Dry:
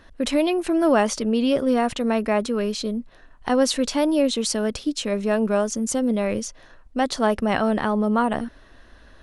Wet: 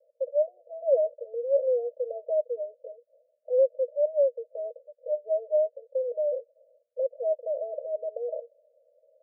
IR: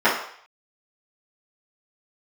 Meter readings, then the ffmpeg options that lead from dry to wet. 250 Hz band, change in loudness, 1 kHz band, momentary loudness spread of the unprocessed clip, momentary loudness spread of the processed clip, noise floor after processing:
below −40 dB, −6.5 dB, below −20 dB, 7 LU, 12 LU, −72 dBFS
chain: -af "asuperpass=centerf=550:order=12:qfactor=3.2"

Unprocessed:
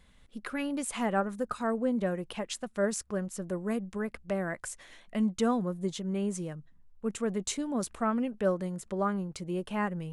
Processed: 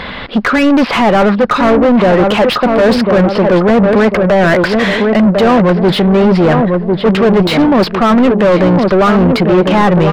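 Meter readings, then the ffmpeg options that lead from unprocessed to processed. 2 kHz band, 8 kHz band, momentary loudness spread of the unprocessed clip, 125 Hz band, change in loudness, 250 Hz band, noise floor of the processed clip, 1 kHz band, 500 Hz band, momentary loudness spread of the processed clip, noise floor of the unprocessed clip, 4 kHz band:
+24.5 dB, can't be measured, 9 LU, +24.0 dB, +23.0 dB, +22.5 dB, −22 dBFS, +23.5 dB, +24.0 dB, 2 LU, −60 dBFS, +24.5 dB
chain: -filter_complex "[0:a]aresample=11025,aresample=44100,apsyclip=22.5dB,areverse,acompressor=threshold=-17dB:ratio=5,areverse,asplit=2[link_01][link_02];[link_02]adelay=1049,lowpass=frequency=870:poles=1,volume=-7dB,asplit=2[link_03][link_04];[link_04]adelay=1049,lowpass=frequency=870:poles=1,volume=0.43,asplit=2[link_05][link_06];[link_06]adelay=1049,lowpass=frequency=870:poles=1,volume=0.43,asplit=2[link_07][link_08];[link_08]adelay=1049,lowpass=frequency=870:poles=1,volume=0.43,asplit=2[link_09][link_10];[link_10]adelay=1049,lowpass=frequency=870:poles=1,volume=0.43[link_11];[link_01][link_03][link_05][link_07][link_09][link_11]amix=inputs=6:normalize=0,asplit=2[link_12][link_13];[link_13]highpass=frequency=720:poles=1,volume=28dB,asoftclip=type=tanh:threshold=-6dB[link_14];[link_12][link_14]amix=inputs=2:normalize=0,lowpass=frequency=1300:poles=1,volume=-6dB,volume=5dB"

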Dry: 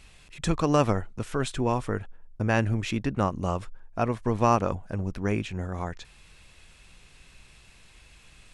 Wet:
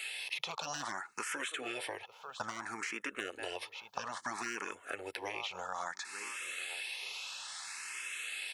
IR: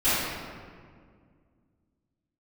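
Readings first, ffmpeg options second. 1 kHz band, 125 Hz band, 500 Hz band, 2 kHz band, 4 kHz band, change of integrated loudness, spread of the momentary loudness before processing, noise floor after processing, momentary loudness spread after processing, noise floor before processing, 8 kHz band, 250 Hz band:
−11.5 dB, −32.0 dB, −16.5 dB, −1.0 dB, +1.5 dB, −12.0 dB, 11 LU, −59 dBFS, 4 LU, −55 dBFS, +0.5 dB, −21.0 dB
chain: -filter_complex "[0:a]aecho=1:1:2.3:0.33,asplit=2[link_01][link_02];[link_02]adelay=892,lowpass=frequency=2100:poles=1,volume=-22.5dB,asplit=2[link_03][link_04];[link_04]adelay=892,lowpass=frequency=2100:poles=1,volume=0.23[link_05];[link_01][link_03][link_05]amix=inputs=3:normalize=0,asoftclip=type=hard:threshold=-12.5dB,highpass=1100,acrossover=split=2700[link_06][link_07];[link_07]acompressor=threshold=-47dB:ratio=4:attack=1:release=60[link_08];[link_06][link_08]amix=inputs=2:normalize=0,afftfilt=real='re*lt(hypot(re,im),0.0398)':imag='im*lt(hypot(re,im),0.0398)':win_size=1024:overlap=0.75,acompressor=threshold=-51dB:ratio=6,asplit=2[link_09][link_10];[link_10]afreqshift=0.6[link_11];[link_09][link_11]amix=inputs=2:normalize=1,volume=17.5dB"

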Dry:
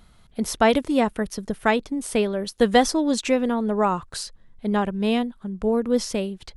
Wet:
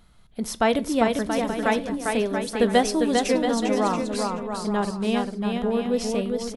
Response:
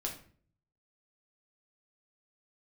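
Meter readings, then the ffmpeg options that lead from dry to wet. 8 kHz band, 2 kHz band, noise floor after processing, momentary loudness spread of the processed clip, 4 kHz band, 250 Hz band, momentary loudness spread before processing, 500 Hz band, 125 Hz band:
−1.0 dB, −1.0 dB, −52 dBFS, 6 LU, −1.0 dB, −1.0 dB, 11 LU, −0.5 dB, −0.5 dB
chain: -filter_complex "[0:a]aecho=1:1:400|680|876|1013|1109:0.631|0.398|0.251|0.158|0.1,asplit=2[link_01][link_02];[1:a]atrim=start_sample=2205[link_03];[link_02][link_03]afir=irnorm=-1:irlink=0,volume=-12.5dB[link_04];[link_01][link_04]amix=inputs=2:normalize=0,volume=-4.5dB"

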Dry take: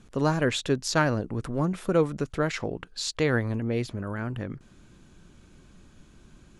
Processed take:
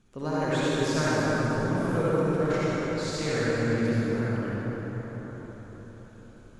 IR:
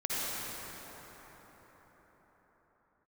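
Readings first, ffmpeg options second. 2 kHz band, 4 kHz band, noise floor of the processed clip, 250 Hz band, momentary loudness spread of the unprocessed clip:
+0.5 dB, −2.5 dB, −49 dBFS, +1.5 dB, 9 LU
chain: -filter_complex "[1:a]atrim=start_sample=2205[link_01];[0:a][link_01]afir=irnorm=-1:irlink=0,volume=-8.5dB"

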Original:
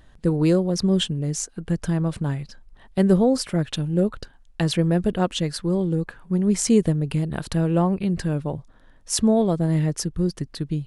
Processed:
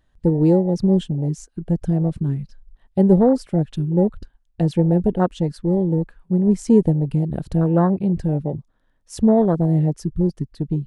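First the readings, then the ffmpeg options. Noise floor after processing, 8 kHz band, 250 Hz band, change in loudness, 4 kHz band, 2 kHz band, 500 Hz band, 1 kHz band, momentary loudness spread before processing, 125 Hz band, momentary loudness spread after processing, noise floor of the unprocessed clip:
−64 dBFS, below −10 dB, +3.5 dB, +3.0 dB, below −10 dB, can't be measured, +3.5 dB, +3.0 dB, 9 LU, +3.5 dB, 9 LU, −52 dBFS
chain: -af "afwtdn=0.0631,volume=3.5dB"

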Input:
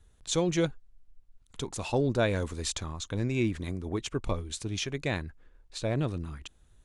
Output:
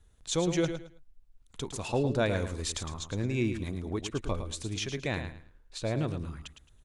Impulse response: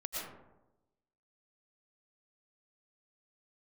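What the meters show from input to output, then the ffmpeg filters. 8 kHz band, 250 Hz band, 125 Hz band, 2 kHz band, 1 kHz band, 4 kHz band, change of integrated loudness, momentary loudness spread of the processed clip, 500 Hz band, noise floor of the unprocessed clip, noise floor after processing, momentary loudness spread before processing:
−1.0 dB, −1.0 dB, −1.0 dB, −1.0 dB, −1.0 dB, −1.0 dB, −1.0 dB, 13 LU, −1.0 dB, −62 dBFS, −62 dBFS, 13 LU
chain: -af "aecho=1:1:109|218|327:0.355|0.0852|0.0204,volume=-1.5dB"

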